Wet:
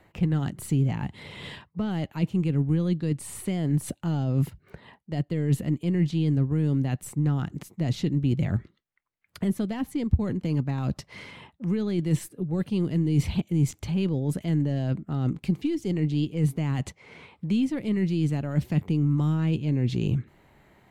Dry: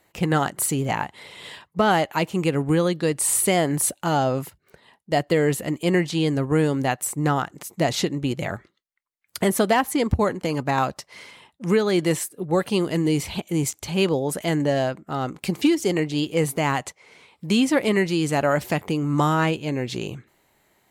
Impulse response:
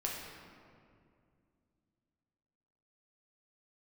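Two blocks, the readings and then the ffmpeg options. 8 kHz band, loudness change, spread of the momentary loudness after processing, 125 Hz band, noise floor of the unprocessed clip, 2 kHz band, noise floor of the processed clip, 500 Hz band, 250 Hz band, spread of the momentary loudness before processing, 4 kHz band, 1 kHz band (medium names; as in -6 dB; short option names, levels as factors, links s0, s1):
-16.0 dB, -4.0 dB, 7 LU, +3.0 dB, -69 dBFS, -14.5 dB, -67 dBFS, -12.0 dB, -2.5 dB, 10 LU, -12.0 dB, -17.5 dB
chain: -filter_complex "[0:a]areverse,acompressor=threshold=0.0355:ratio=6,areverse,aeval=exprs='0.168*(cos(1*acos(clip(val(0)/0.168,-1,1)))-cos(1*PI/2))+0.00133*(cos(8*acos(clip(val(0)/0.168,-1,1)))-cos(8*PI/2))':c=same,bass=f=250:g=8,treble=f=4000:g=-14,acrossover=split=330|3000[s0][s1][s2];[s1]acompressor=threshold=0.00282:ratio=2.5[s3];[s0][s3][s2]amix=inputs=3:normalize=0,volume=1.78"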